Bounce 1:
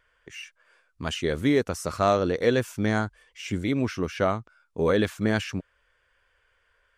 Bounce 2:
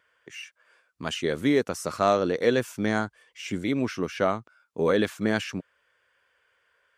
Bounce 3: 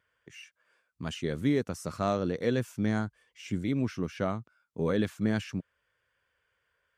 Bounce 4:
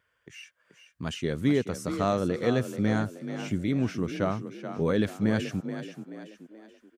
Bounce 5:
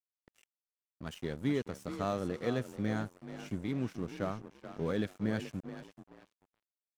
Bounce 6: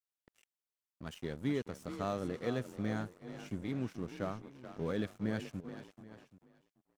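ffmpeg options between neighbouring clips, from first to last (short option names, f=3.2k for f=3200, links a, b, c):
-af "highpass=150"
-af "bass=f=250:g=12,treble=f=4k:g=1,volume=-8.5dB"
-filter_complex "[0:a]asplit=5[a][b][c][d][e];[b]adelay=430,afreqshift=36,volume=-10dB[f];[c]adelay=860,afreqshift=72,volume=-17.5dB[g];[d]adelay=1290,afreqshift=108,volume=-25.1dB[h];[e]adelay=1720,afreqshift=144,volume=-32.6dB[i];[a][f][g][h][i]amix=inputs=5:normalize=0,volume=2.5dB"
-af "aeval=exprs='sgn(val(0))*max(abs(val(0))-0.00891,0)':c=same,volume=-7dB"
-af "aecho=1:1:780:0.112,volume=-2.5dB"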